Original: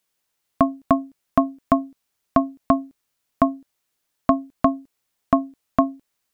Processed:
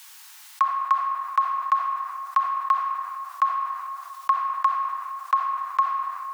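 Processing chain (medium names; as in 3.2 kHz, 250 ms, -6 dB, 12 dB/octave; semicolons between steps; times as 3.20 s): Chebyshev high-pass 790 Hz, order 10; reverberation RT60 1.6 s, pre-delay 5 ms, DRR 5.5 dB; level flattener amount 50%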